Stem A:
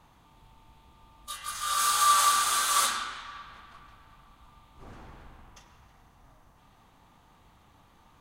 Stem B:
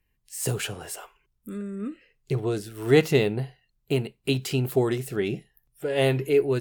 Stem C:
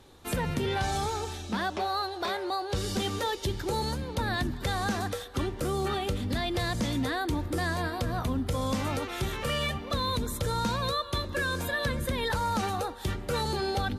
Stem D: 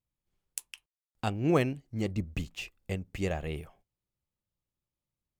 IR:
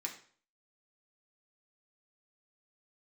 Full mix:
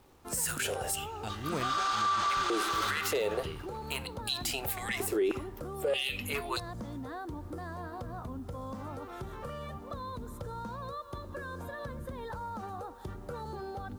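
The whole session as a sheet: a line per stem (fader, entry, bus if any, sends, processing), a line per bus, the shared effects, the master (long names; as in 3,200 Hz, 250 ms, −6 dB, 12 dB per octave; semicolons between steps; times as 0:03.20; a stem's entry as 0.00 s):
+2.0 dB, 0.00 s, no send, low-pass filter 6,000 Hz 24 dB per octave; high-shelf EQ 3,400 Hz −8.5 dB; dead-zone distortion −54 dBFS
−4.5 dB, 0.00 s, send −13.5 dB, high-shelf EQ 3,700 Hz +9.5 dB; hard clipping −13 dBFS, distortion −18 dB; high-pass on a step sequencer 3.2 Hz 370–4,100 Hz
−6.0 dB, 0.00 s, no send, high shelf with overshoot 1,700 Hz −10 dB, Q 1.5; downward compressor, threshold −31 dBFS, peak gain reduction 6.5 dB; bit reduction 10 bits
−10.0 dB, 0.00 s, no send, high-shelf EQ 4,500 Hz +8.5 dB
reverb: on, RT60 0.50 s, pre-delay 3 ms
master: brickwall limiter −22 dBFS, peak gain reduction 12 dB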